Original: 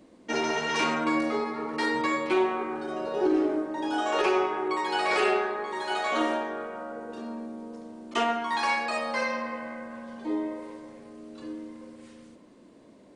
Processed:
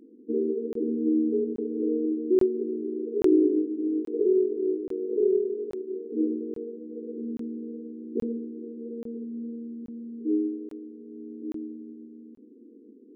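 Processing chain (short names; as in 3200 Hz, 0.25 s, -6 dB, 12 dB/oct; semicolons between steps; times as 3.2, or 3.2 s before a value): FFT band-pass 210–490 Hz; crackling interface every 0.83 s, samples 1024, zero, from 0.73; gain +4.5 dB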